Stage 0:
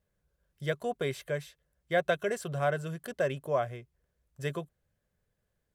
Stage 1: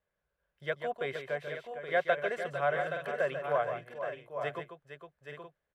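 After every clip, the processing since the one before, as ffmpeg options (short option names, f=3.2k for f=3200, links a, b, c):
-filter_complex "[0:a]acrossover=split=480 3300:gain=0.224 1 0.126[a][b][c];[a][b][c]amix=inputs=3:normalize=0,asplit=2[d][e];[e]aecho=0:1:142|459|823|871:0.376|0.316|0.376|0.266[f];[d][f]amix=inputs=2:normalize=0,volume=1dB"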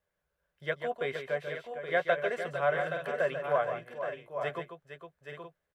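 -filter_complex "[0:a]asplit=2[a][b];[b]adelay=12,volume=-10dB[c];[a][c]amix=inputs=2:normalize=0,volume=1dB"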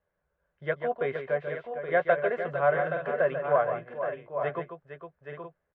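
-af "lowpass=1.7k,volume=4.5dB"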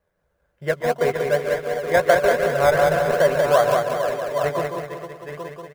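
-filter_complex "[0:a]asplit=2[a][b];[b]acrusher=samples=24:mix=1:aa=0.000001:lfo=1:lforange=14.4:lforate=2.7,volume=-8.5dB[c];[a][c]amix=inputs=2:normalize=0,aecho=1:1:187|374|561|748|935|1122:0.631|0.284|0.128|0.0575|0.0259|0.0116,volume=5.5dB"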